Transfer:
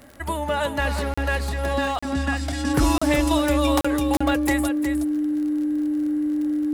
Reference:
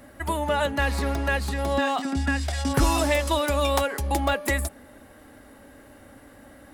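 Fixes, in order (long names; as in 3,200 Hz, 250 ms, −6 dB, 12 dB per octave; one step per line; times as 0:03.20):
click removal
notch filter 300 Hz, Q 30
repair the gap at 0:01.14/0:01.99/0:02.98/0:03.81/0:04.17, 35 ms
echo removal 363 ms −8 dB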